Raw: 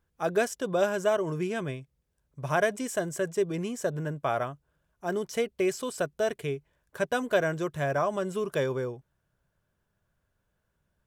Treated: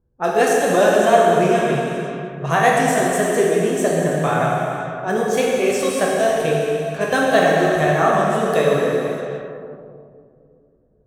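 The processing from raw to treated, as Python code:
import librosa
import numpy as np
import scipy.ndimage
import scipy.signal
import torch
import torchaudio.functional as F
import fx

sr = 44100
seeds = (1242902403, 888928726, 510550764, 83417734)

y = fx.pitch_ramps(x, sr, semitones=2.0, every_ms=678)
y = fx.rev_plate(y, sr, seeds[0], rt60_s=3.0, hf_ratio=0.9, predelay_ms=0, drr_db=-4.0)
y = fx.env_lowpass(y, sr, base_hz=470.0, full_db=-27.5)
y = y * 10.0 ** (8.5 / 20.0)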